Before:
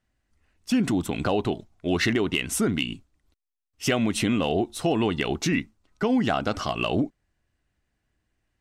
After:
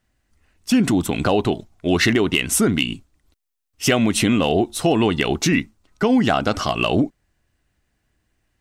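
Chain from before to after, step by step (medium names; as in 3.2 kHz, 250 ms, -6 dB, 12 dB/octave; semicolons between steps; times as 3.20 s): treble shelf 7.1 kHz +4.5 dB; trim +6 dB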